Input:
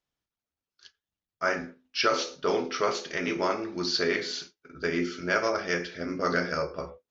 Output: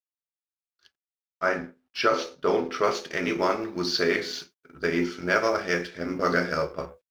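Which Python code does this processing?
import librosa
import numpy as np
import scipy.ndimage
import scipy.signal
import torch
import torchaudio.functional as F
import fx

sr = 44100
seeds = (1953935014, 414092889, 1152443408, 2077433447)

y = fx.law_mismatch(x, sr, coded='A')
y = fx.high_shelf(y, sr, hz=3400.0, db=fx.steps((0.0, -11.0), (2.83, -3.5)))
y = y * librosa.db_to_amplitude(4.0)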